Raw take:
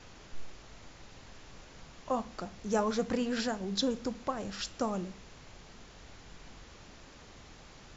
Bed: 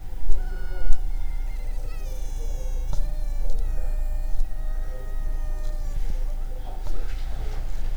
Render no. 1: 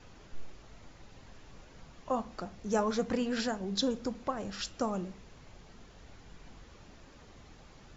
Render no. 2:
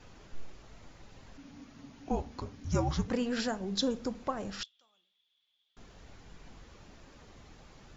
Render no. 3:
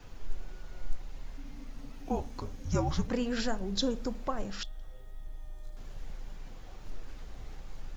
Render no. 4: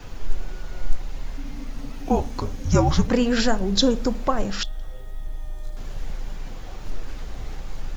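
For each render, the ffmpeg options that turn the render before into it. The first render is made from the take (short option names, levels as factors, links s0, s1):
-af "afftdn=nr=6:nf=-54"
-filter_complex "[0:a]asplit=3[s0][s1][s2];[s0]afade=t=out:st=1.37:d=0.02[s3];[s1]afreqshift=-290,afade=t=in:st=1.37:d=0.02,afade=t=out:st=3.07:d=0.02[s4];[s2]afade=t=in:st=3.07:d=0.02[s5];[s3][s4][s5]amix=inputs=3:normalize=0,asettb=1/sr,asplit=3[s6][s7][s8];[s6]atrim=end=4.634[s9];[s7]atrim=start=4.63:end=5.77,asetpts=PTS-STARTPTS,afade=t=in:d=0.004:c=qsin,afade=t=out:st=1.136:d=0.004:c=qsin,bandpass=f=3400:t=q:w=20[s10];[s8]atrim=start=5.766[s11];[s9][s10]acrossfade=d=0.004:c1=hsin:c2=qsin[s12];[s12][s11]acrossfade=d=0.004:c1=qsin:c2=hsin"
-filter_complex "[1:a]volume=0.158[s0];[0:a][s0]amix=inputs=2:normalize=0"
-af "volume=3.76"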